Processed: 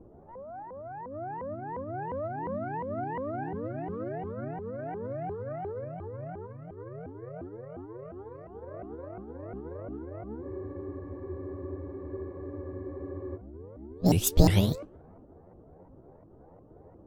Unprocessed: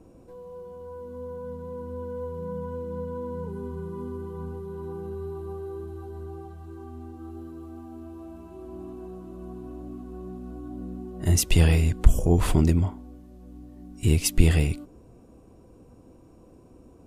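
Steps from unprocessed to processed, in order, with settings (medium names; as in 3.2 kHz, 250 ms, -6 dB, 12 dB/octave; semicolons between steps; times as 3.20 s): sawtooth pitch modulation +12 st, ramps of 353 ms; level-controlled noise filter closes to 810 Hz, open at -21 dBFS; spectral freeze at 10.44 s, 2.92 s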